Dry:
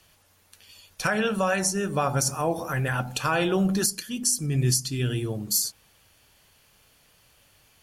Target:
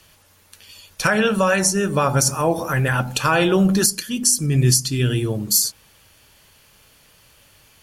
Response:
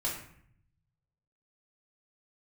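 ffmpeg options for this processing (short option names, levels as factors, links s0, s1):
-af "bandreject=f=730:w=12,volume=2.24"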